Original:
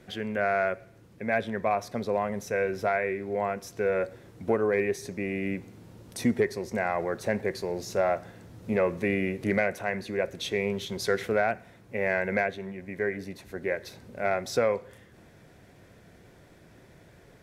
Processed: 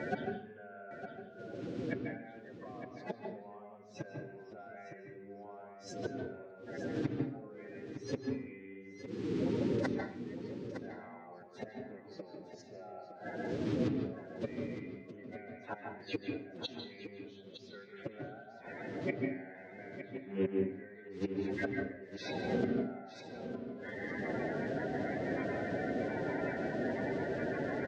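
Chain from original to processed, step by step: bin magnitudes rounded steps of 30 dB; dynamic EQ 730 Hz, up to +6 dB, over -44 dBFS, Q 5; compressor 3:1, threshold -45 dBFS, peak gain reduction 18.5 dB; flipped gate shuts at -38 dBFS, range -28 dB; time stretch by phase-locked vocoder 1.6×; BPF 170–7000 Hz; air absorption 150 m; echo 0.91 s -11 dB; on a send at -2.5 dB: reverb RT60 0.50 s, pre-delay 0.142 s; on the sum: gain +18 dB

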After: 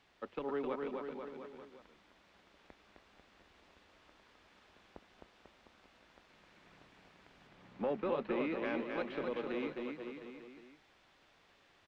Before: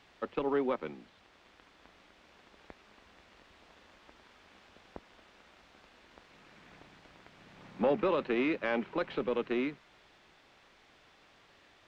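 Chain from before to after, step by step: 7.47–8.53 LPF 3700 Hz 6 dB/oct; bouncing-ball echo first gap 0.26 s, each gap 0.9×, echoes 5; gain -7.5 dB

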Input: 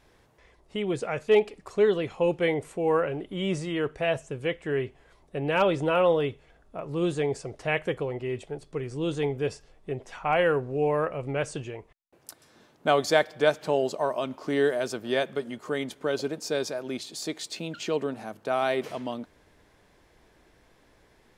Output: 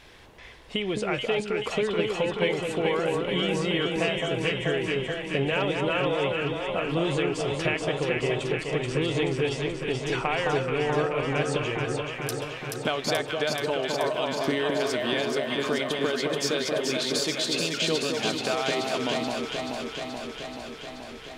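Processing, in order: bell 3000 Hz +9.5 dB 1.6 oct; compressor, threshold -33 dBFS, peak gain reduction 18.5 dB; on a send: echo with dull and thin repeats by turns 0.215 s, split 1200 Hz, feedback 85%, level -2 dB; on the sum: gain +7 dB

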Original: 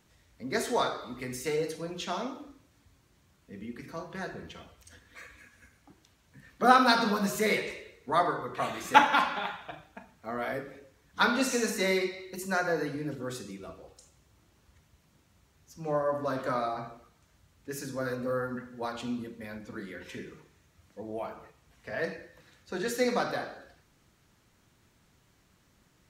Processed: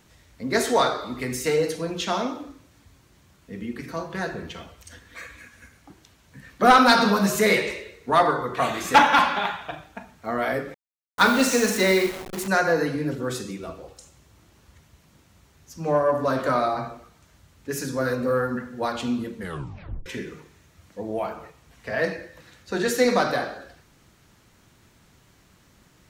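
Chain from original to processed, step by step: 10.74–12.48 level-crossing sampler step -38 dBFS; soft clip -15.5 dBFS, distortion -14 dB; 19.36 tape stop 0.70 s; gain +8.5 dB

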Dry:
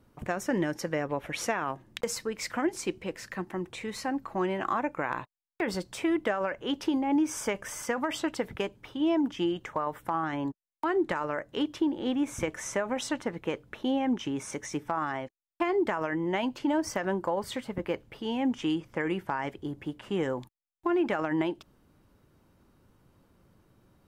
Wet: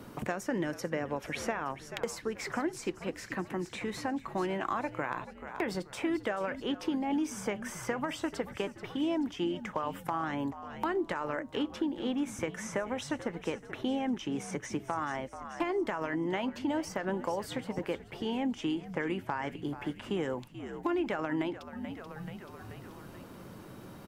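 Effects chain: frequency-shifting echo 0.433 s, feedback 46%, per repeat -71 Hz, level -16 dB; harmoniser -3 st -16 dB; three-band squash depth 70%; gain -4 dB

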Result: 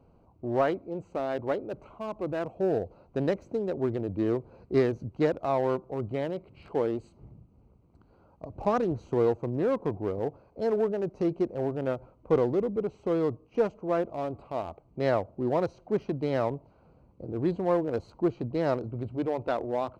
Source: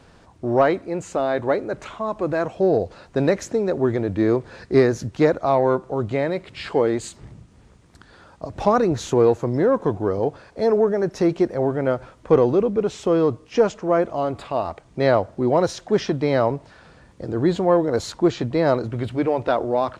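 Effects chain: Wiener smoothing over 25 samples; gain -8 dB

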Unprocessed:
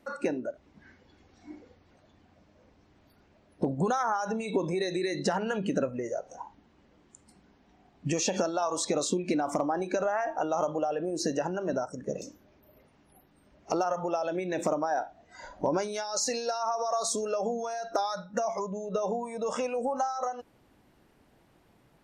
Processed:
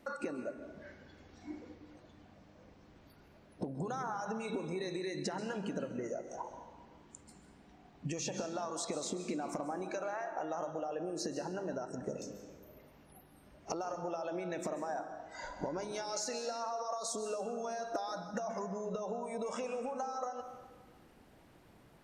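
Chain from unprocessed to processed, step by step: 9.91–10.32 HPF 560 Hz; compressor 5:1, threshold -38 dBFS, peak gain reduction 14.5 dB; plate-style reverb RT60 1.5 s, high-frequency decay 0.55×, pre-delay 0.12 s, DRR 8 dB; gain +1 dB

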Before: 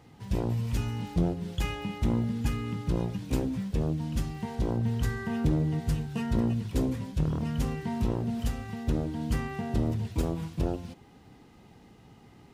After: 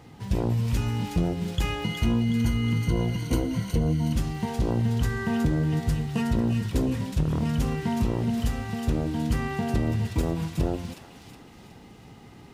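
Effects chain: 1.84–4.13 ripple EQ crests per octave 1.9, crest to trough 14 dB; compressor, threshold -26 dBFS, peak gain reduction 8.5 dB; thin delay 0.368 s, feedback 49%, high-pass 1500 Hz, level -5.5 dB; gain +6 dB

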